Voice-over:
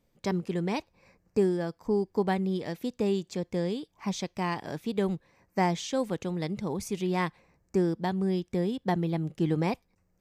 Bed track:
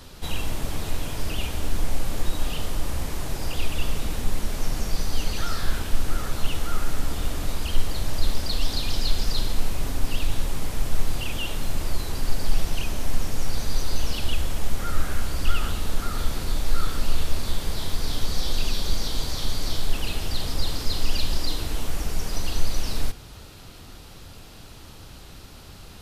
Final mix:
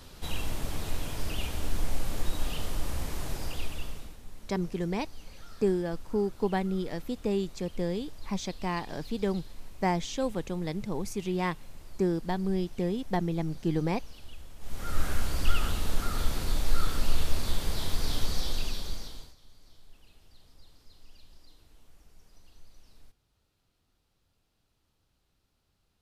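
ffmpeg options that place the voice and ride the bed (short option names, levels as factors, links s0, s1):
-filter_complex "[0:a]adelay=4250,volume=0.841[s0];[1:a]volume=4.73,afade=t=out:st=3.3:d=0.87:silence=0.149624,afade=t=in:st=14.59:d=0.47:silence=0.11885,afade=t=out:st=18.18:d=1.17:silence=0.0398107[s1];[s0][s1]amix=inputs=2:normalize=0"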